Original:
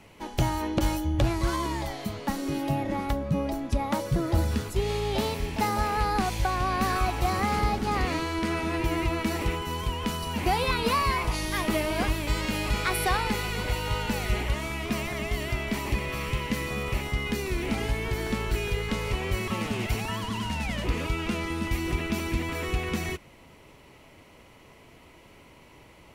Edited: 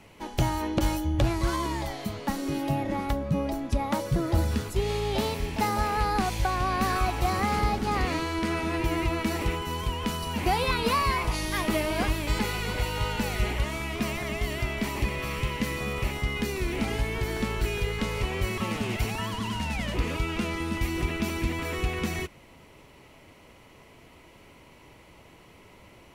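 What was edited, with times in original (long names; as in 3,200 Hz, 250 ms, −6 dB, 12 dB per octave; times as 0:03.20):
0:12.39–0:13.29: remove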